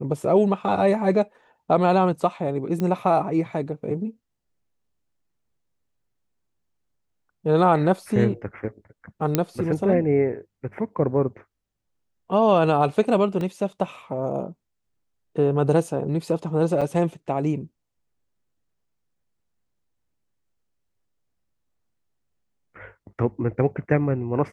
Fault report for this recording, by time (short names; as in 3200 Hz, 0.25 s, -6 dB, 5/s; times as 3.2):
2.8 pop -16 dBFS
9.35 pop -5 dBFS
13.41 gap 2.1 ms
16.81–16.82 gap 5.9 ms